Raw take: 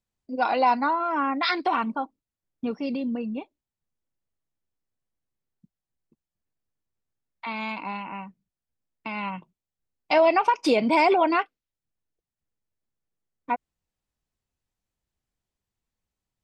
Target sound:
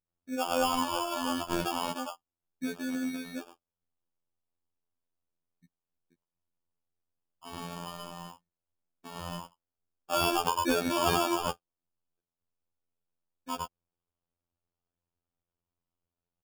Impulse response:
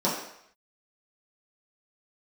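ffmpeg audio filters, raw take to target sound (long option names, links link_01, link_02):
-filter_complex "[0:a]acrossover=split=940|3000[link_01][link_02][link_03];[link_03]adelay=60[link_04];[link_02]adelay=100[link_05];[link_01][link_05][link_04]amix=inputs=3:normalize=0,acrusher=samples=22:mix=1:aa=0.000001,afftfilt=real='hypot(re,im)*cos(PI*b)':imag='0':win_size=2048:overlap=0.75,volume=-1.5dB"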